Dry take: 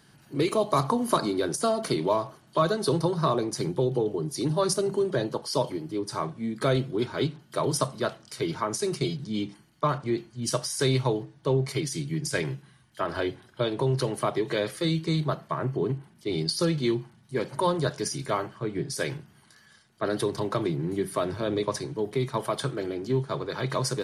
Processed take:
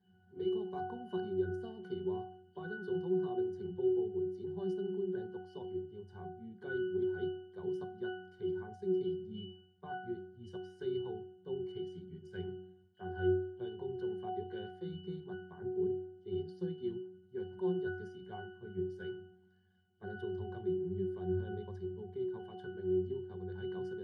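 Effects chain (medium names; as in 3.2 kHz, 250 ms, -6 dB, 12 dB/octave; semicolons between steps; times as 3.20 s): pitch-class resonator F#, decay 0.67 s; trim +7.5 dB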